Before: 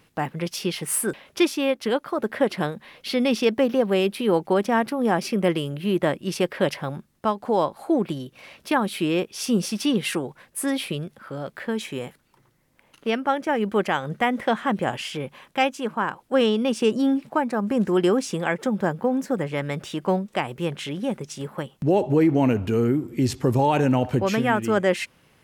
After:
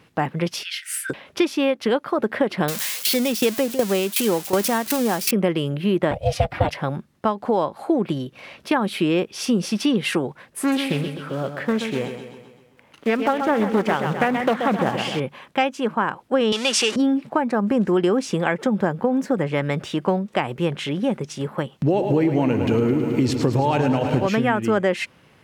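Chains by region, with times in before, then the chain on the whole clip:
0.63–1.10 s: steep high-pass 1.4 kHz 96 dB/octave + peaking EQ 10 kHz -3 dB 0.39 oct
2.68–5.31 s: zero-crossing glitches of -15 dBFS + tremolo saw down 2.7 Hz, depth 80% + treble shelf 5.7 kHz +7.5 dB
6.11–6.70 s: peaking EQ 310 Hz +12.5 dB 0.65 oct + comb 4.6 ms, depth 94% + ring modulator 310 Hz
10.59–15.20 s: block-companded coder 5-bit + feedback delay 129 ms, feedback 53%, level -8.5 dB + loudspeaker Doppler distortion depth 0.3 ms
16.52–16.96 s: jump at every zero crossing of -28.5 dBFS + frequency weighting ITU-R 468
21.72–24.27 s: peaking EQ 4.2 kHz +4 dB 2.2 oct + bit-crushed delay 107 ms, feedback 80%, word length 8-bit, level -10 dB
whole clip: high-pass 63 Hz; treble shelf 6.6 kHz -10.5 dB; compression, threshold -21 dBFS; trim +5.5 dB

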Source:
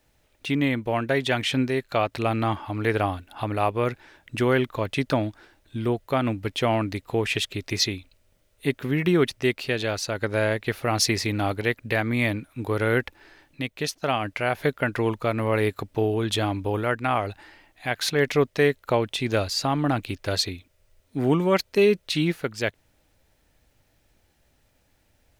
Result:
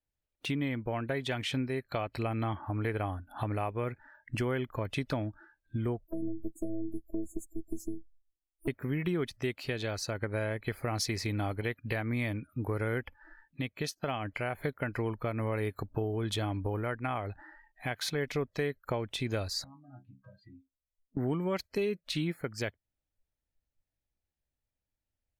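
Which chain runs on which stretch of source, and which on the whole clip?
6.07–8.68 s: Chebyshev band-stop 500–7500 Hz, order 4 + touch-sensitive flanger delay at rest 10.3 ms, full sweep at -26 dBFS + robot voice 326 Hz
19.64–21.17 s: low-pass 1.1 kHz 6 dB/octave + compression 8:1, threshold -40 dBFS + inharmonic resonator 63 Hz, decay 0.33 s, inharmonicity 0.008
whole clip: spectral noise reduction 27 dB; compression 2.5:1, threshold -33 dBFS; bass shelf 120 Hz +8 dB; trim -2 dB

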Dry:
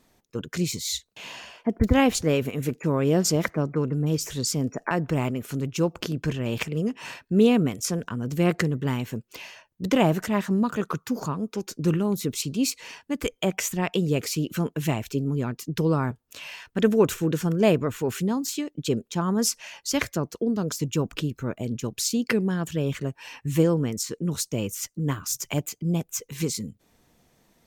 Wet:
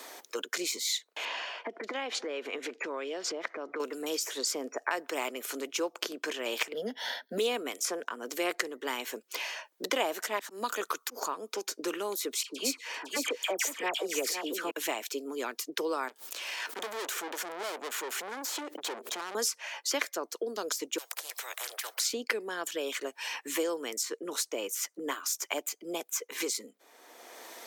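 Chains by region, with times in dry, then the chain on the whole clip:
1.25–3.80 s: low-pass 3.8 kHz + compression 12:1, threshold -28 dBFS
6.73–7.38 s: static phaser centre 1.7 kHz, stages 8 + small resonant body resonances 210/3400 Hz, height 15 dB, ringing for 20 ms
10.39–11.39 s: treble shelf 10 kHz +6 dB + slow attack 135 ms
12.43–14.71 s: phase dispersion lows, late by 67 ms, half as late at 1.7 kHz + delay 507 ms -9 dB
16.08–19.35 s: valve stage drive 36 dB, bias 0.65 + swell ahead of each attack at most 38 dB/s
20.98–22.00 s: steep high-pass 510 Hz 72 dB/octave + spectrum-flattening compressor 10:1
whole clip: Bessel high-pass 560 Hz, order 8; band-stop 2.7 kHz, Q 18; three bands compressed up and down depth 70%

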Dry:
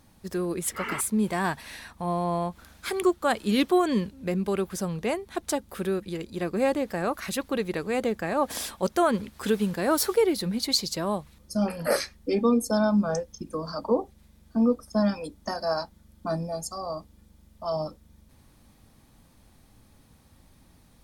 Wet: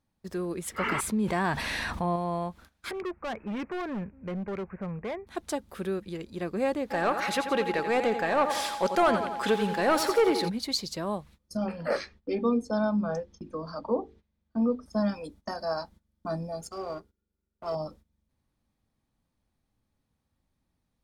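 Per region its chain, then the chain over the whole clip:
0.78–2.16 s: treble shelf 7.1 kHz -7 dB + level flattener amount 70%
2.91–5.27 s: steep low-pass 2.5 kHz 96 dB/octave + peaking EQ 310 Hz -5 dB 0.49 oct + hard clipper -27 dBFS
6.90–10.48 s: feedback delay 87 ms, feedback 52%, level -11 dB + overdrive pedal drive 16 dB, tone 4 kHz, clips at -10.5 dBFS + whistle 830 Hz -30 dBFS
11.57–14.86 s: low-pass 4.4 kHz + hum notches 50/100/150/200/250/300/350/400/450 Hz
16.61–17.75 s: companding laws mixed up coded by A + small resonant body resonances 400/1400 Hz, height 16 dB, ringing for 50 ms
whole clip: gate -47 dBFS, range -17 dB; treble shelf 7.4 kHz -7.5 dB; trim -3.5 dB

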